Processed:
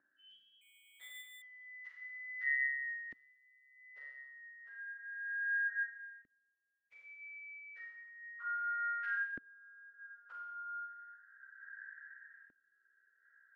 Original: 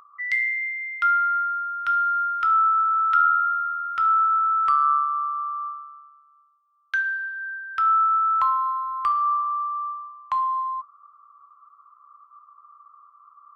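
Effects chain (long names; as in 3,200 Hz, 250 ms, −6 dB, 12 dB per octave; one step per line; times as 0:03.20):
partials spread apart or drawn together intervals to 121%
dynamic equaliser 1,100 Hz, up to +7 dB, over −46 dBFS, Q 3.8
downward compressor 2.5 to 1, threshold −35 dBFS, peak gain reduction 13 dB
brickwall limiter −32.5 dBFS, peak gain reduction 9.5 dB
four-comb reverb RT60 0.89 s, combs from 29 ms, DRR −1.5 dB
auto-filter band-pass saw up 0.32 Hz 270–2,600 Hz
rotating-speaker cabinet horn 0.65 Hz
0:00.61–0:01.42: bad sample-rate conversion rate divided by 8×, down none, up hold
level +3 dB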